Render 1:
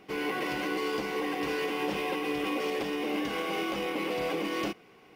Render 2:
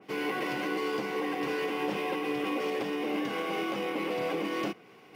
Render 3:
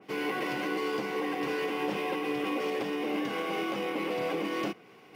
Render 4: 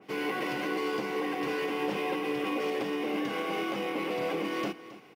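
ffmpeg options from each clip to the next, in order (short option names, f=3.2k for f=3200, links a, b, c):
-af "highpass=f=96:w=0.5412,highpass=f=96:w=1.3066,areverse,acompressor=mode=upward:threshold=-49dB:ratio=2.5,areverse,adynamicequalizer=threshold=0.00398:dfrequency=2600:dqfactor=0.7:tfrequency=2600:tqfactor=0.7:attack=5:release=100:ratio=0.375:range=2:mode=cutabove:tftype=highshelf"
-af anull
-af "aecho=1:1:270:0.158"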